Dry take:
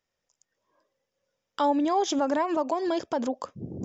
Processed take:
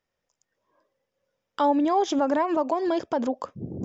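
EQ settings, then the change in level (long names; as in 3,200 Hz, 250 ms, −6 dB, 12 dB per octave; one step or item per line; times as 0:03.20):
high-shelf EQ 4,300 Hz −9.5 dB
+2.5 dB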